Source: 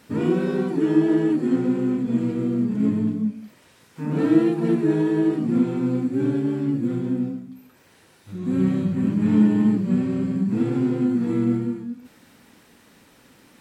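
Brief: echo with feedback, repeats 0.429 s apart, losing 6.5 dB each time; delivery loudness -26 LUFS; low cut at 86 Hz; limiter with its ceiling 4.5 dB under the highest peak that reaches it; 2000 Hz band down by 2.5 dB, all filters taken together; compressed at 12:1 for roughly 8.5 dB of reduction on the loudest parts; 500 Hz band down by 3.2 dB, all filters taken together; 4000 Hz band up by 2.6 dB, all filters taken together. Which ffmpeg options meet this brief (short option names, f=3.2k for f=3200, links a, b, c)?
-af "highpass=86,equalizer=f=500:t=o:g=-5,equalizer=f=2k:t=o:g=-4,equalizer=f=4k:t=o:g=5,acompressor=threshold=-22dB:ratio=12,alimiter=limit=-20dB:level=0:latency=1,aecho=1:1:429|858|1287|1716|2145|2574:0.473|0.222|0.105|0.0491|0.0231|0.0109,volume=2dB"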